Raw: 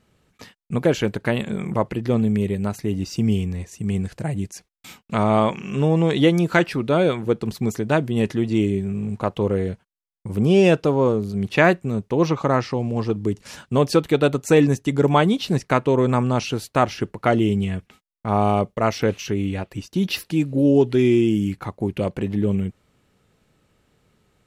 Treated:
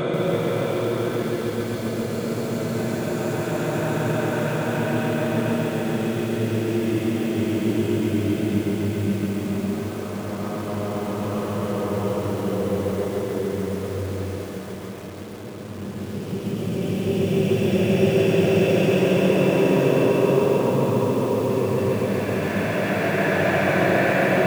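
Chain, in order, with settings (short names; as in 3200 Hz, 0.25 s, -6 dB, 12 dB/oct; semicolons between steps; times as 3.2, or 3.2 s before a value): diffused feedback echo 0.627 s, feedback 67%, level -13 dB; Paulstretch 5.3×, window 1.00 s, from 7.12; lo-fi delay 0.137 s, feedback 80%, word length 6-bit, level -4 dB; gain -4.5 dB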